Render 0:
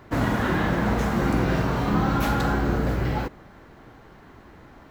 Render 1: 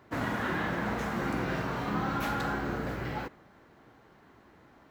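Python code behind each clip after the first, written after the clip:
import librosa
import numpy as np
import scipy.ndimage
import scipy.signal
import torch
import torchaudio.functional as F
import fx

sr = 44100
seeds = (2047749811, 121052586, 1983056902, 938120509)

y = fx.highpass(x, sr, hz=130.0, slope=6)
y = fx.dynamic_eq(y, sr, hz=1800.0, q=0.73, threshold_db=-41.0, ratio=4.0, max_db=4)
y = y * 10.0 ** (-8.5 / 20.0)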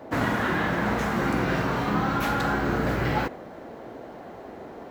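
y = fx.rider(x, sr, range_db=10, speed_s=0.5)
y = fx.dmg_noise_band(y, sr, seeds[0], low_hz=200.0, high_hz=780.0, level_db=-49.0)
y = y * 10.0 ** (7.0 / 20.0)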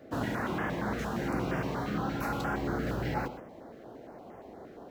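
y = x + 10.0 ** (-13.0 / 20.0) * np.pad(x, (int(123 * sr / 1000.0), 0))[:len(x)]
y = fx.filter_held_notch(y, sr, hz=8.6, low_hz=940.0, high_hz=4000.0)
y = y * 10.0 ** (-6.5 / 20.0)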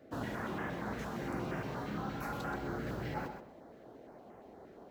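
y = x + 10.0 ** (-10.0 / 20.0) * np.pad(x, (int(128 * sr / 1000.0), 0))[:len(x)]
y = y * 10.0 ** (-6.5 / 20.0)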